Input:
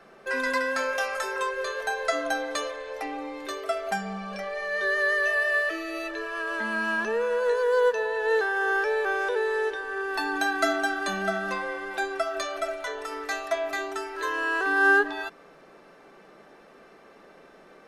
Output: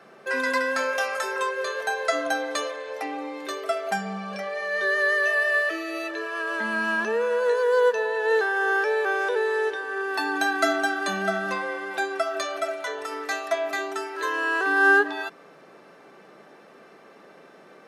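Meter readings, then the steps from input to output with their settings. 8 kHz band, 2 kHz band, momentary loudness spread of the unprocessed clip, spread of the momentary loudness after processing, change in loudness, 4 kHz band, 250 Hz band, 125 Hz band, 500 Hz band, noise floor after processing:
+2.0 dB, +2.0 dB, 11 LU, 11 LU, +2.0 dB, +2.0 dB, +2.0 dB, no reading, +2.0 dB, -51 dBFS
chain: high-pass 99 Hz 24 dB/octave; trim +2 dB

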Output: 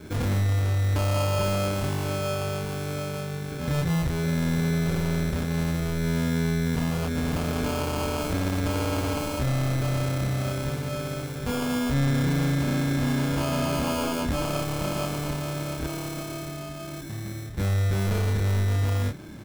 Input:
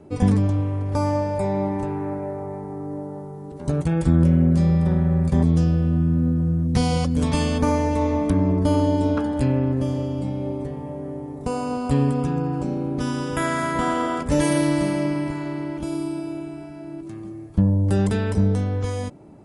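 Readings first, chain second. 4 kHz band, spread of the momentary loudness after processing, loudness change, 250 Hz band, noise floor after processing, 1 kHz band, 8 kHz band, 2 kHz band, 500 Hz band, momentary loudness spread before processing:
+3.0 dB, 7 LU, -4.5 dB, -6.5 dB, -36 dBFS, -4.5 dB, +2.0 dB, +1.0 dB, -4.0 dB, 13 LU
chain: bass shelf 170 Hz +7.5 dB; peak limiter -12 dBFS, peak gain reduction 9 dB; sample-rate reducer 1.9 kHz, jitter 0%; saturation -24.5 dBFS, distortion -8 dB; doubling 29 ms -2.5 dB

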